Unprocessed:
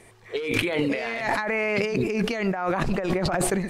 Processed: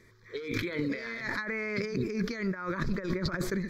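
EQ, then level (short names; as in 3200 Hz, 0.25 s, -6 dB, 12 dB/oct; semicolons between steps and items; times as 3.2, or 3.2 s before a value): fixed phaser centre 2800 Hz, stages 6; -4.5 dB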